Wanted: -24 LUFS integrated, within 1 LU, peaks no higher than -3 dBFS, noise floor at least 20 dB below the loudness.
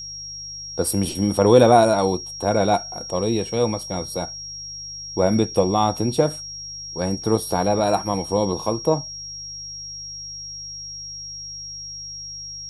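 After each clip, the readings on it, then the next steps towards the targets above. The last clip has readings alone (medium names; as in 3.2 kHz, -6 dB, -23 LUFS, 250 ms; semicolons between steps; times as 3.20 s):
hum 50 Hz; highest harmonic 150 Hz; hum level -46 dBFS; steady tone 5.6 kHz; tone level -32 dBFS; loudness -22.5 LUFS; peak level -1.5 dBFS; loudness target -24.0 LUFS
-> de-hum 50 Hz, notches 3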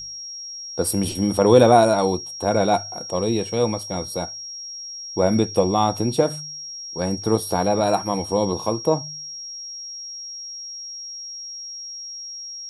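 hum not found; steady tone 5.6 kHz; tone level -32 dBFS
-> band-stop 5.6 kHz, Q 30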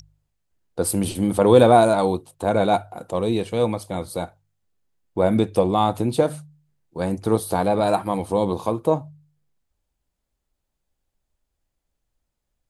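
steady tone not found; loudness -21.0 LUFS; peak level -1.5 dBFS; loudness target -24.0 LUFS
-> trim -3 dB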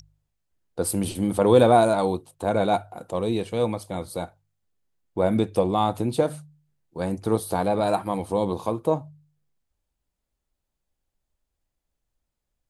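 loudness -24.0 LUFS; peak level -4.5 dBFS; noise floor -82 dBFS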